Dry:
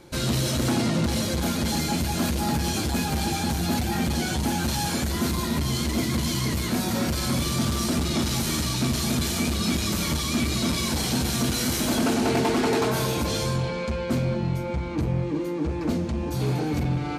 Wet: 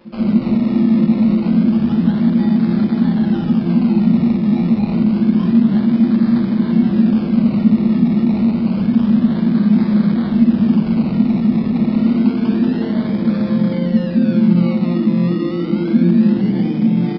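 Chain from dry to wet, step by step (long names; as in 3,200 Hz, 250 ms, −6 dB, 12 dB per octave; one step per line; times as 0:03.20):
high-pass filter 210 Hz 24 dB per octave
parametric band 1,300 Hz −12.5 dB 0.28 octaves
in parallel at −1 dB: speech leveller
on the sum: brickwall limiter −18.5 dBFS, peak gain reduction 10 dB
sample-and-hold swept by an LFO 22×, swing 60% 0.28 Hz
dead-zone distortion −48.5 dBFS
backwards echo 959 ms −20.5 dB
on a send at −6 dB: convolution reverb, pre-delay 47 ms
on the sum: downsampling to 11,025 Hz
level −3.5 dB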